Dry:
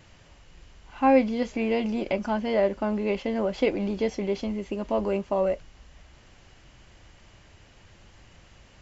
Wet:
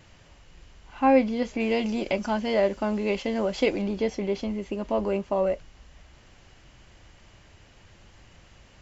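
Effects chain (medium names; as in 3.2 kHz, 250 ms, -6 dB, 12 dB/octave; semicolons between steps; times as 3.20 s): 1.60–3.82 s: treble shelf 4.2 kHz +11 dB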